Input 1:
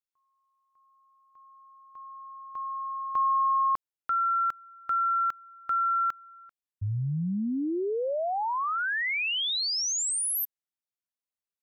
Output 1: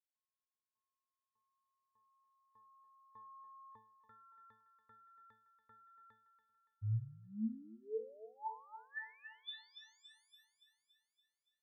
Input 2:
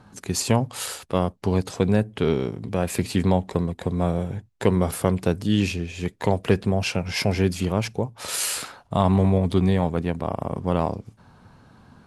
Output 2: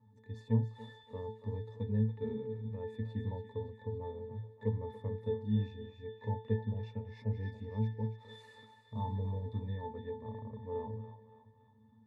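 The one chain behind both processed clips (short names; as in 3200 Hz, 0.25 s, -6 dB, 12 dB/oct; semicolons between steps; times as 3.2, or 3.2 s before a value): octave resonator A, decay 0.33 s; on a send: thinning echo 0.284 s, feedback 60%, high-pass 690 Hz, level -9 dB; on the sum: gain -2 dB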